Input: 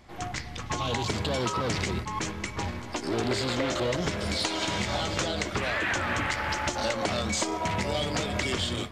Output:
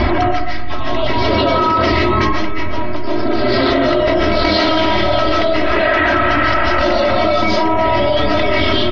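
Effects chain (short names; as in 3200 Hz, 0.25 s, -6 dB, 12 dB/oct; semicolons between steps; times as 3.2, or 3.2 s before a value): spectral gate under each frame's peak -30 dB strong; steep low-pass 5400 Hz 72 dB/oct; high shelf 3000 Hz -8 dB; comb 3.1 ms, depth 77%; reverb RT60 0.50 s, pre-delay 0.105 s, DRR -6.5 dB; fast leveller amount 100%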